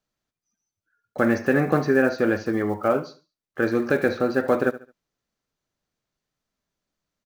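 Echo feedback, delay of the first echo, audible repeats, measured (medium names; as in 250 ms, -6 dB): 33%, 72 ms, 2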